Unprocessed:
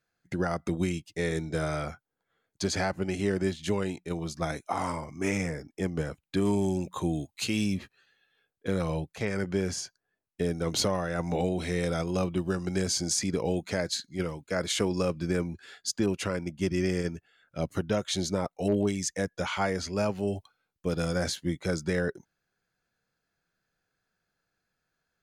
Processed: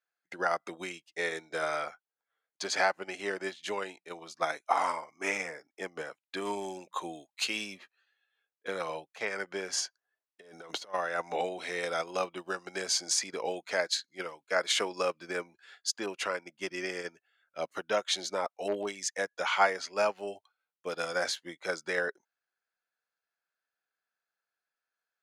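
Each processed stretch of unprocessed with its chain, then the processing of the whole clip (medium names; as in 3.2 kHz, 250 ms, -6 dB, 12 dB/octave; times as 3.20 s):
9.73–10.94 s: compressor with a negative ratio -33 dBFS, ratio -0.5 + band-stop 2.4 kHz, Q 14
whole clip: high-pass 700 Hz 12 dB/octave; treble shelf 6 kHz -10.5 dB; upward expansion 1.5:1, over -57 dBFS; trim +8 dB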